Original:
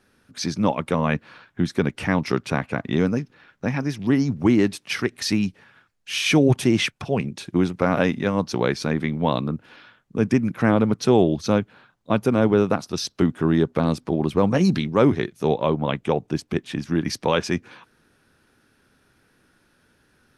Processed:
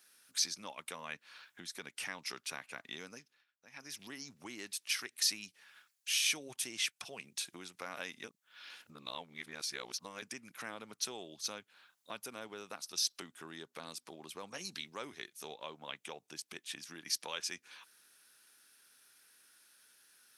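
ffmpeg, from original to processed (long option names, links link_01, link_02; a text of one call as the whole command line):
ffmpeg -i in.wav -filter_complex "[0:a]asplit=5[link_01][link_02][link_03][link_04][link_05];[link_01]atrim=end=3.45,asetpts=PTS-STARTPTS,afade=type=out:start_time=3.14:duration=0.31:silence=0.0749894[link_06];[link_02]atrim=start=3.45:end=3.71,asetpts=PTS-STARTPTS,volume=-22.5dB[link_07];[link_03]atrim=start=3.71:end=8.242,asetpts=PTS-STARTPTS,afade=type=in:duration=0.31:silence=0.0749894[link_08];[link_04]atrim=start=8.238:end=10.222,asetpts=PTS-STARTPTS,areverse[link_09];[link_05]atrim=start=10.218[link_10];[link_06][link_07][link_08]concat=n=3:v=0:a=1[link_11];[link_11][link_09]acrossfade=duration=0.004:curve1=hsin:curve2=hsin[link_12];[link_12][link_10]acrossfade=duration=0.004:curve1=hsin:curve2=hsin,acompressor=threshold=-36dB:ratio=2,aderivative,volume=6.5dB" out.wav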